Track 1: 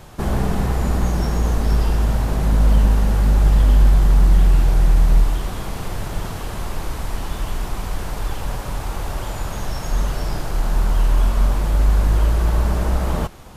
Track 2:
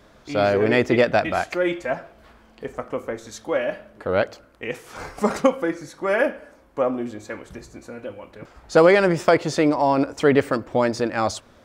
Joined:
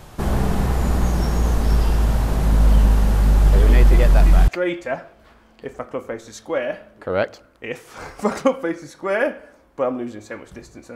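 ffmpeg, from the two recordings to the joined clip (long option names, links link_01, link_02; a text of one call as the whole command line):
ffmpeg -i cue0.wav -i cue1.wav -filter_complex "[1:a]asplit=2[link_01][link_02];[0:a]apad=whole_dur=10.95,atrim=end=10.95,atrim=end=4.482[link_03];[link_02]atrim=start=1.468:end=7.94[link_04];[link_01]atrim=start=0.52:end=1.47,asetpts=PTS-STARTPTS,volume=-7dB,afade=type=in:duration=0.004:curve=hsin,afade=type=out:start_time=0.946:duration=0.004:curve=hsin,adelay=155673S[link_05];[link_03][link_04]acrossfade=duration=0.004:curve1=hsin:curve2=hsin[link_06];[link_06][link_05]amix=inputs=2:normalize=0" out.wav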